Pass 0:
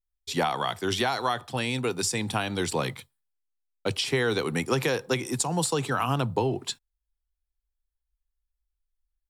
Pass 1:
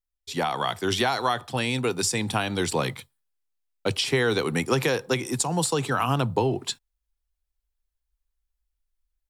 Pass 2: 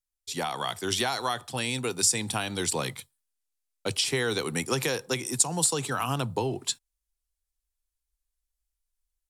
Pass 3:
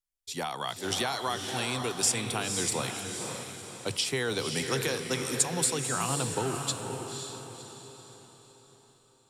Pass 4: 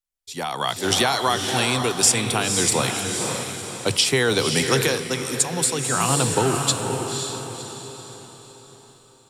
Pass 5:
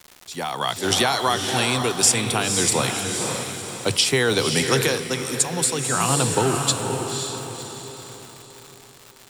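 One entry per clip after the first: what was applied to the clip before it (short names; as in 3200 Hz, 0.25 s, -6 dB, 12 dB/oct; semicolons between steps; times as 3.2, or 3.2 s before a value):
AGC gain up to 5.5 dB; gain -3 dB
bell 9200 Hz +10.5 dB 1.9 oct; gain -5.5 dB
diffused feedback echo 0.527 s, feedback 44%, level -5 dB; gain -3 dB
AGC gain up to 11 dB
crackle 310/s -31 dBFS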